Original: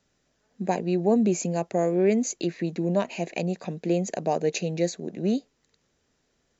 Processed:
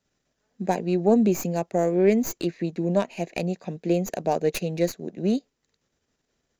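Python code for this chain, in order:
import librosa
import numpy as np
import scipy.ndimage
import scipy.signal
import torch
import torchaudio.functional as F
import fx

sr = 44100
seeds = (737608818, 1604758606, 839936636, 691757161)

p1 = fx.tracing_dist(x, sr, depth_ms=0.085)
p2 = fx.level_steps(p1, sr, step_db=18)
p3 = p1 + (p2 * librosa.db_to_amplitude(-1.5))
p4 = fx.upward_expand(p3, sr, threshold_db=-37.0, expansion=1.5)
y = p4 * librosa.db_to_amplitude(2.0)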